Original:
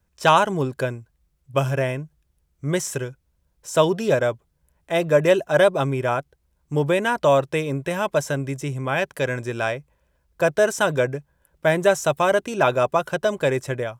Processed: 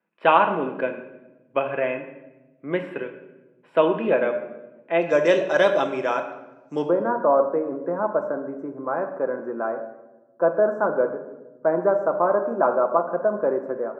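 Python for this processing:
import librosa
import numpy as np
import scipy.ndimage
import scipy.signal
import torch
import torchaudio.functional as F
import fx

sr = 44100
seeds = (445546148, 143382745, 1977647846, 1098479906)

y = fx.ellip_bandpass(x, sr, low_hz=220.0, high_hz=fx.steps((0.0, 2600.0), (5.01, 6100.0), (6.87, 1300.0)), order=3, stop_db=40)
y = fx.room_shoebox(y, sr, seeds[0], volume_m3=450.0, walls='mixed', distance_m=0.73)
y = y * 10.0 ** (-1.0 / 20.0)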